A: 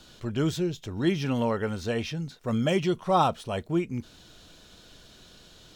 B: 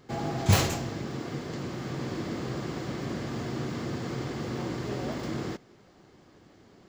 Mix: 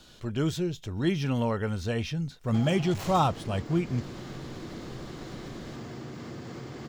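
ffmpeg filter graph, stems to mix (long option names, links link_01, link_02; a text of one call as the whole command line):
ffmpeg -i stem1.wav -i stem2.wav -filter_complex "[0:a]asubboost=boost=3:cutoff=190,volume=-1.5dB[link_01];[1:a]asoftclip=type=hard:threshold=-25.5dB,acompressor=threshold=-39dB:ratio=6,adelay=2450,volume=1.5dB[link_02];[link_01][link_02]amix=inputs=2:normalize=0" out.wav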